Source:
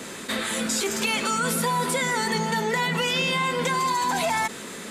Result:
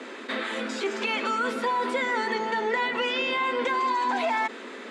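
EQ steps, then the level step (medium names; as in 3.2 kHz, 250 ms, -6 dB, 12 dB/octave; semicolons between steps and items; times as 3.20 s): Chebyshev high-pass 240 Hz, order 5; low-pass 2.8 kHz 12 dB/octave; 0.0 dB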